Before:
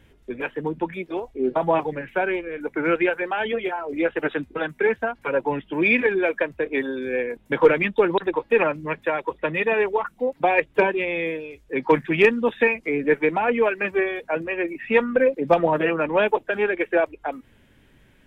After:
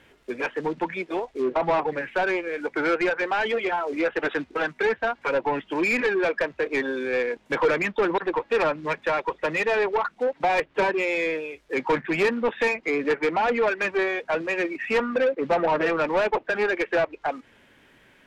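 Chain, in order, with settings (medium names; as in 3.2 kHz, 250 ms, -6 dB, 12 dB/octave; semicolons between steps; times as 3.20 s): companded quantiser 6-bit; low-pass that closes with the level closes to 2.3 kHz, closed at -17.5 dBFS; overdrive pedal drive 21 dB, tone 2.5 kHz, clips at -5.5 dBFS; trim -8 dB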